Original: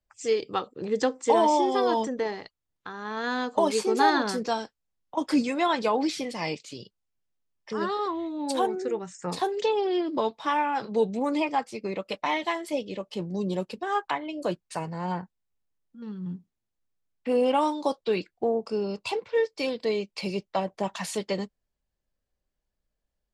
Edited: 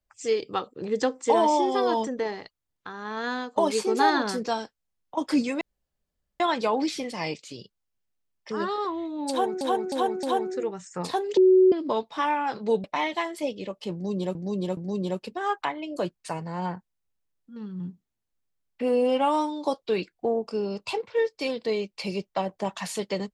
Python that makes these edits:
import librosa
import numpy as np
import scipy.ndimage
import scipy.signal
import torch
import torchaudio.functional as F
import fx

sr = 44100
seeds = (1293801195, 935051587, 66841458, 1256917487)

y = fx.edit(x, sr, fx.fade_out_to(start_s=3.18, length_s=0.38, curve='qsin', floor_db=-11.5),
    fx.insert_room_tone(at_s=5.61, length_s=0.79),
    fx.repeat(start_s=8.51, length_s=0.31, count=4),
    fx.bleep(start_s=9.65, length_s=0.35, hz=373.0, db=-13.0),
    fx.cut(start_s=11.12, length_s=1.02),
    fx.repeat(start_s=13.23, length_s=0.42, count=3),
    fx.stretch_span(start_s=17.28, length_s=0.55, factor=1.5), tone=tone)